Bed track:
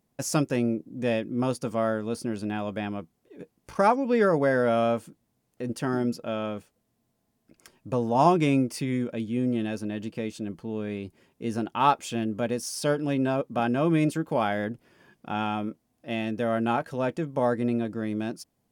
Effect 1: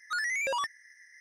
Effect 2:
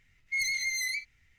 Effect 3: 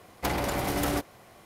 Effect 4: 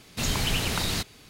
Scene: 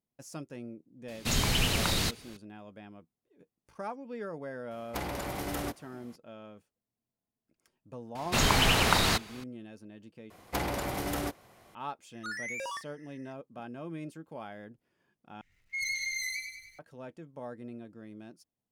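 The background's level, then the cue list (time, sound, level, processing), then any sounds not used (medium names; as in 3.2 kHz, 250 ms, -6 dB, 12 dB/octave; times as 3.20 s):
bed track -17.5 dB
1.08 s: add 4 -1 dB
4.71 s: add 3 -7 dB
8.15 s: add 4 -0.5 dB + peaking EQ 1 kHz +9 dB 2.4 oct
10.30 s: replace with 3 -4 dB + gain riding
12.13 s: add 1 -7.5 dB + doubling 41 ms -12 dB
15.41 s: replace with 2 -5 dB + bit-crushed delay 98 ms, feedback 55%, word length 11-bit, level -5.5 dB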